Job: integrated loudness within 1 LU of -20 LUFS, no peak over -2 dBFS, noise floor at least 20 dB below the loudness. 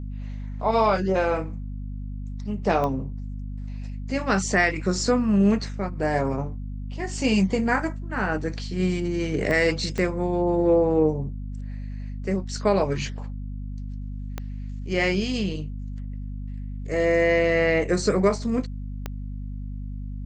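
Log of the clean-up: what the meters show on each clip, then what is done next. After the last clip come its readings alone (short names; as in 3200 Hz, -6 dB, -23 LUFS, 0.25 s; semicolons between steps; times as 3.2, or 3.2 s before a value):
clicks 5; hum 50 Hz; harmonics up to 250 Hz; hum level -30 dBFS; loudness -24.0 LUFS; peak -8.0 dBFS; loudness target -20.0 LUFS
-> de-click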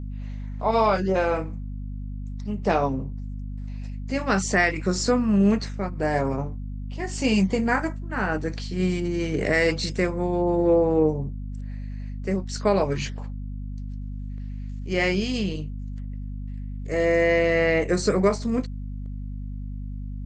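clicks 0; hum 50 Hz; harmonics up to 250 Hz; hum level -30 dBFS
-> notches 50/100/150/200/250 Hz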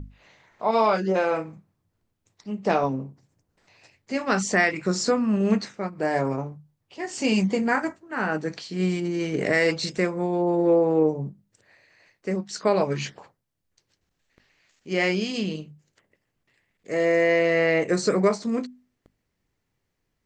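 hum none; loudness -24.0 LUFS; peak -8.5 dBFS; loudness target -20.0 LUFS
-> gain +4 dB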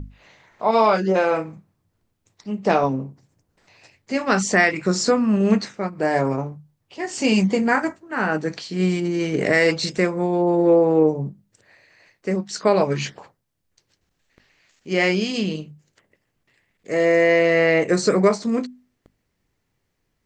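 loudness -20.0 LUFS; peak -4.5 dBFS; noise floor -74 dBFS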